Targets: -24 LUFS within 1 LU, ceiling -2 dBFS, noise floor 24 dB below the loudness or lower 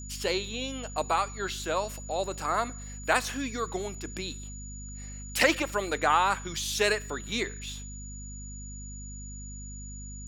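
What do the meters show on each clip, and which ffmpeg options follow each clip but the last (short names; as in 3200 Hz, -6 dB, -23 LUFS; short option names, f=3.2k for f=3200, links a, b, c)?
hum 50 Hz; harmonics up to 250 Hz; hum level -39 dBFS; steady tone 6900 Hz; tone level -44 dBFS; loudness -29.5 LUFS; peak -6.5 dBFS; loudness target -24.0 LUFS
-> -af "bandreject=f=50:t=h:w=4,bandreject=f=100:t=h:w=4,bandreject=f=150:t=h:w=4,bandreject=f=200:t=h:w=4,bandreject=f=250:t=h:w=4"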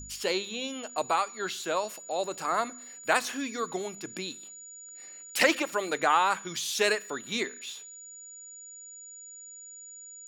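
hum none; steady tone 6900 Hz; tone level -44 dBFS
-> -af "bandreject=f=6.9k:w=30"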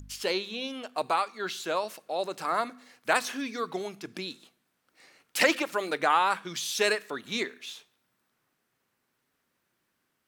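steady tone none; loudness -29.5 LUFS; peak -6.5 dBFS; loudness target -24.0 LUFS
-> -af "volume=5.5dB,alimiter=limit=-2dB:level=0:latency=1"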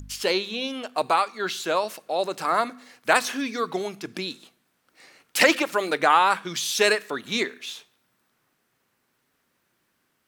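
loudness -24.0 LUFS; peak -2.0 dBFS; noise floor -72 dBFS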